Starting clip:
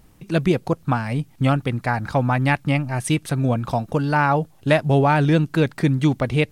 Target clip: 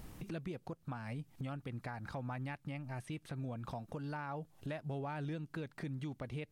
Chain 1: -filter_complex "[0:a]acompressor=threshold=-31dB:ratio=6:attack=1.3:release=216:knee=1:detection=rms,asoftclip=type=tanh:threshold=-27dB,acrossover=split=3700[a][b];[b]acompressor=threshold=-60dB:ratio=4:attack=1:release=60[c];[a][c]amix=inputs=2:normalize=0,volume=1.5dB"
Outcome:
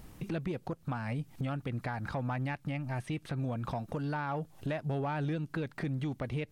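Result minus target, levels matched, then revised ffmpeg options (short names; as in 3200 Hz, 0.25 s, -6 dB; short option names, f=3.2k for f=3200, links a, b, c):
compressor: peak gain reduction -8.5 dB
-filter_complex "[0:a]acompressor=threshold=-41dB:ratio=6:attack=1.3:release=216:knee=1:detection=rms,asoftclip=type=tanh:threshold=-27dB,acrossover=split=3700[a][b];[b]acompressor=threshold=-60dB:ratio=4:attack=1:release=60[c];[a][c]amix=inputs=2:normalize=0,volume=1.5dB"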